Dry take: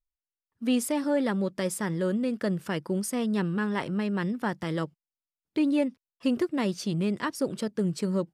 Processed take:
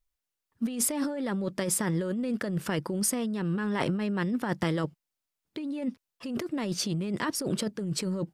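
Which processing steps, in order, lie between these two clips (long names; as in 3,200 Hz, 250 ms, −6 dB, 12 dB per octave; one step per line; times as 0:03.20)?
compressor whose output falls as the input rises −32 dBFS, ratio −1
level +2.5 dB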